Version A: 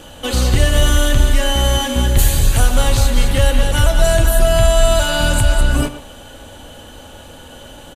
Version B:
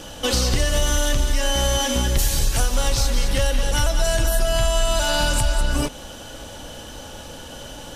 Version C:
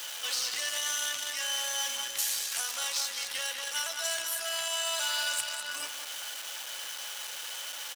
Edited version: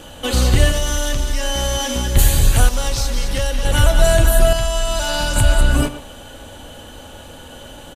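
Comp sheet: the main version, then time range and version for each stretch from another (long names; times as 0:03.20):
A
0:00.72–0:02.15: punch in from B
0:02.69–0:03.65: punch in from B
0:04.53–0:05.36: punch in from B
not used: C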